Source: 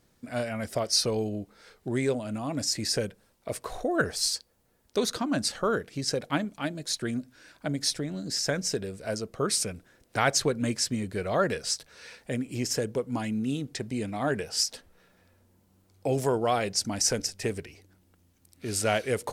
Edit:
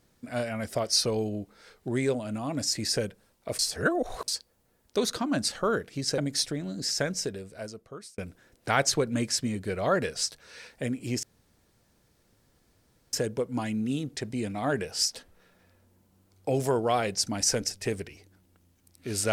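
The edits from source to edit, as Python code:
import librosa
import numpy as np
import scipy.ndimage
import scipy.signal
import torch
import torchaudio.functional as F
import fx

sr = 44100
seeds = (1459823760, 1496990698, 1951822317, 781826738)

y = fx.edit(x, sr, fx.reverse_span(start_s=3.59, length_s=0.69),
    fx.cut(start_s=6.18, length_s=1.48),
    fx.fade_out_span(start_s=8.46, length_s=1.2),
    fx.insert_room_tone(at_s=12.71, length_s=1.9), tone=tone)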